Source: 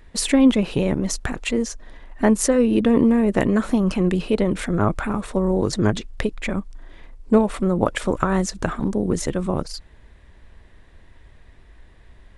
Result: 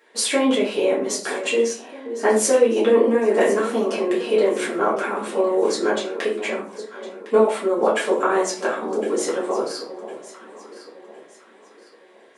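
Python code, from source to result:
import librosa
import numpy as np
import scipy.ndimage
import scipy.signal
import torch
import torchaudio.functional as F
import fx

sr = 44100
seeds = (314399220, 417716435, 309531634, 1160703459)

y = scipy.signal.sosfilt(scipy.signal.butter(4, 350.0, 'highpass', fs=sr, output='sos'), x)
y = fx.echo_alternate(y, sr, ms=529, hz=880.0, feedback_pct=60, wet_db=-11.0)
y = fx.room_shoebox(y, sr, seeds[0], volume_m3=31.0, walls='mixed', distance_m=1.4)
y = F.gain(torch.from_numpy(y), -5.5).numpy()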